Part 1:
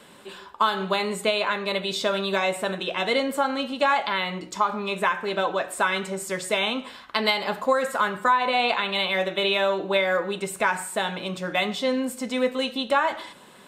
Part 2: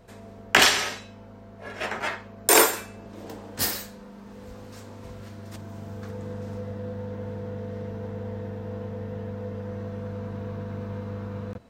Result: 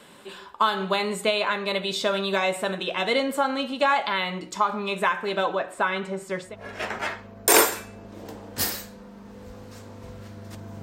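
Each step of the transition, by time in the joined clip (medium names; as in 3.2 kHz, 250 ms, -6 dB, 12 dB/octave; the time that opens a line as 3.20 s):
part 1
5.55–6.56 s: low-pass 2.1 kHz 6 dB/octave
6.48 s: go over to part 2 from 1.49 s, crossfade 0.16 s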